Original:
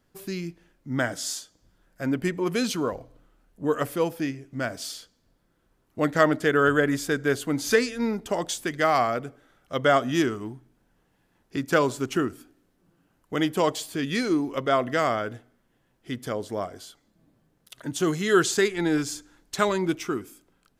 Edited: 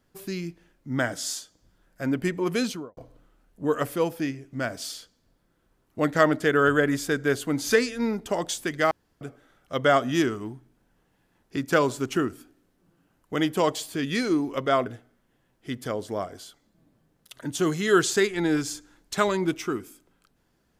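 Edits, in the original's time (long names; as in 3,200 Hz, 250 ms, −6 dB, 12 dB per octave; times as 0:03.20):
0:02.59–0:02.97: fade out and dull
0:08.91–0:09.21: fill with room tone
0:14.86–0:15.27: remove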